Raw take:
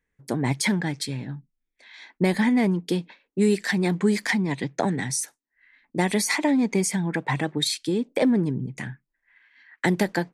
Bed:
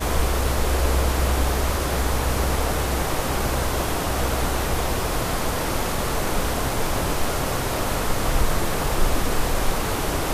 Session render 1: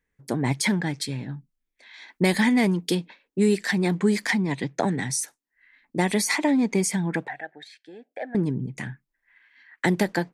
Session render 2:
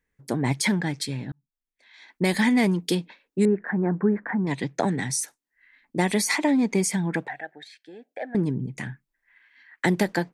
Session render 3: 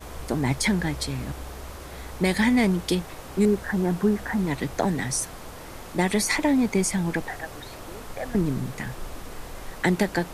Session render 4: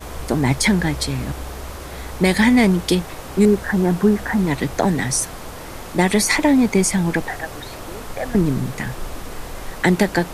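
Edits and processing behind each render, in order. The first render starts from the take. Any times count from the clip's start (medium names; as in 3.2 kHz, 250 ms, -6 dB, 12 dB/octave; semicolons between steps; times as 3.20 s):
2.08–2.95 s: treble shelf 2.1 kHz +8 dB; 7.28–8.35 s: two resonant band-passes 1.1 kHz, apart 1.2 oct
1.32–2.51 s: fade in; 3.45–4.47 s: Chebyshev low-pass 1.6 kHz, order 4
add bed -16 dB
trim +6.5 dB; peak limiter -3 dBFS, peak gain reduction 1.5 dB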